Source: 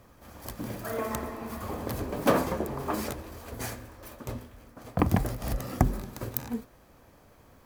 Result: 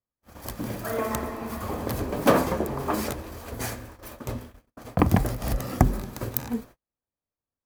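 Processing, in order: gate -47 dBFS, range -43 dB; gain +4 dB

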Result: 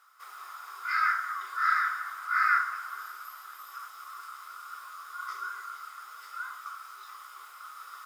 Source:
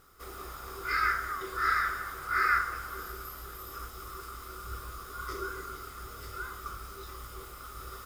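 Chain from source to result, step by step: ladder high-pass 920 Hz, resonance 45%; high shelf 10000 Hz -6 dB; notch 1200 Hz, Q 18; gain +6.5 dB

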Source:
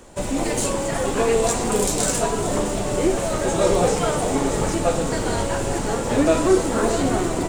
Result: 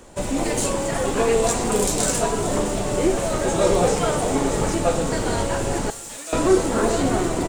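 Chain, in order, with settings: 5.9–6.33 differentiator; echo 0.272 s -21 dB

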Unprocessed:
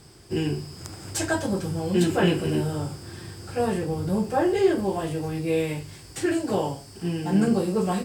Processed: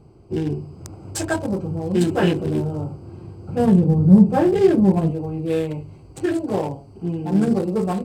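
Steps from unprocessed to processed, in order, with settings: Wiener smoothing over 25 samples; 3.48–5.11 bell 180 Hz +14.5 dB 0.91 oct; gain +3 dB

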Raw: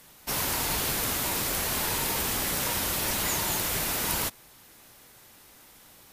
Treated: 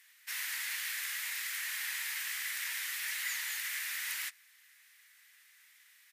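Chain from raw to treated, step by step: harmoniser -7 st -8 dB; ladder high-pass 1700 Hz, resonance 65%

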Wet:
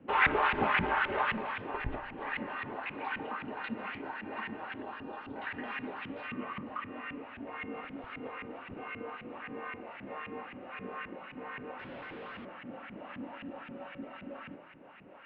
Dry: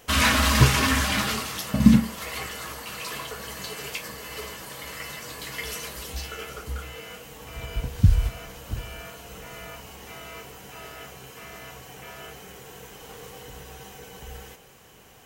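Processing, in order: LFO band-pass saw up 3.8 Hz 310–2400 Hz; in parallel at -0.5 dB: compressor, threshold -43 dBFS, peak gain reduction 22.5 dB; 11.79–12.45 on the sum: Schmitt trigger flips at -53 dBFS; on a send at -16.5 dB: reverb RT60 1.8 s, pre-delay 32 ms; on the sum: mistuned SSB -210 Hz 340–3300 Hz; 4.82–5.36 bell 2000 Hz -13.5 dB 0.71 oct; gain +1.5 dB

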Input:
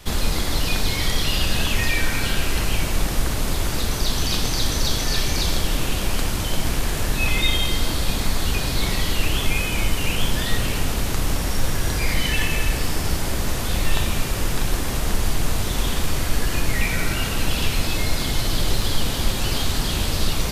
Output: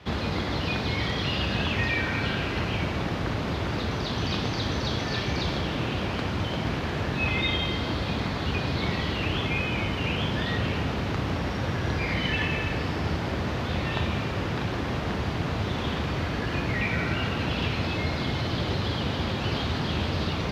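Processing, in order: HPF 75 Hz 24 dB/oct; air absorption 260 m

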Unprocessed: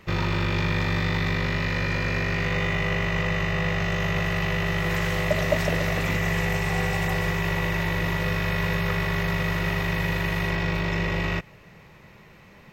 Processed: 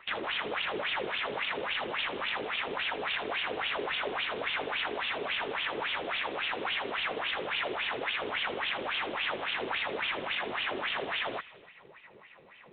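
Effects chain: in parallel at +0.5 dB: limiter -17 dBFS, peak gain reduction 8 dB; on the sum: wrapped overs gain 18 dB; wah 3.6 Hz 380–3100 Hz, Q 3.3; thin delay 79 ms, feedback 61%, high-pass 2700 Hz, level -11 dB; G.726 24 kbps 8000 Hz

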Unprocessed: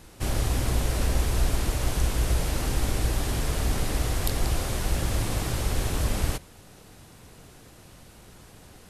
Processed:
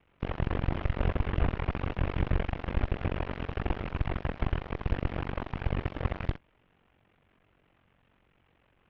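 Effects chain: delta modulation 16 kbps, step -38.5 dBFS; ring modulator 23 Hz; added harmonics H 7 -16 dB, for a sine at -13 dBFS

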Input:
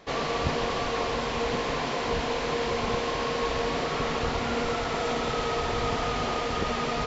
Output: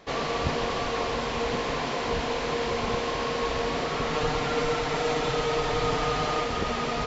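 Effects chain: 4.12–6.44 comb 6.6 ms, depth 65%

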